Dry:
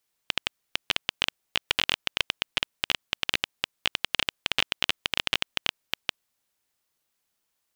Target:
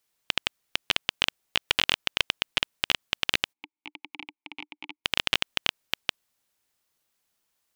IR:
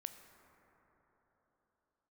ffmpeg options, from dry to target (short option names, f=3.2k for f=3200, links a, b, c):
-filter_complex "[0:a]asplit=3[a][b][c];[a]afade=t=out:st=3.52:d=0.02[d];[b]asplit=3[e][f][g];[e]bandpass=f=300:t=q:w=8,volume=0dB[h];[f]bandpass=f=870:t=q:w=8,volume=-6dB[i];[g]bandpass=f=2.24k:t=q:w=8,volume=-9dB[j];[h][i][j]amix=inputs=3:normalize=0,afade=t=in:st=3.52:d=0.02,afade=t=out:st=5.04:d=0.02[k];[c]afade=t=in:st=5.04:d=0.02[l];[d][k][l]amix=inputs=3:normalize=0,volume=1.5dB"